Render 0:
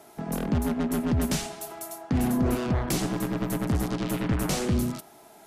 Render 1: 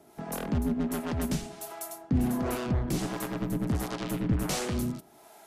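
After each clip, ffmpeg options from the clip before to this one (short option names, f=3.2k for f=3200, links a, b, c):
-filter_complex "[0:a]acrossover=split=430[a][b];[a]aeval=exprs='val(0)*(1-0.7/2+0.7/2*cos(2*PI*1.4*n/s))':c=same[c];[b]aeval=exprs='val(0)*(1-0.7/2-0.7/2*cos(2*PI*1.4*n/s))':c=same[d];[c][d]amix=inputs=2:normalize=0"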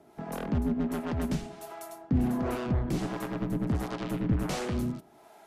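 -af "highshelf=f=4.7k:g=-11"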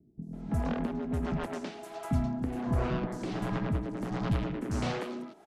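-filter_complex "[0:a]lowpass=7.2k,asplit=2[a][b];[b]acompressor=threshold=-38dB:ratio=6,volume=0dB[c];[a][c]amix=inputs=2:normalize=0,acrossover=split=270|5700[d][e][f];[f]adelay=220[g];[e]adelay=330[h];[d][h][g]amix=inputs=3:normalize=0,volume=-2.5dB"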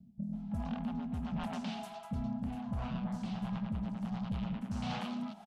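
-af "firequalizer=gain_entry='entry(150,0);entry(210,12);entry(320,-23);entry(750,3);entry(1100,-1);entry(1900,-5);entry(2900,4);entry(6900,-4)':delay=0.05:min_phase=1,areverse,acompressor=threshold=-39dB:ratio=4,areverse,asoftclip=type=tanh:threshold=-31dB,volume=4dB"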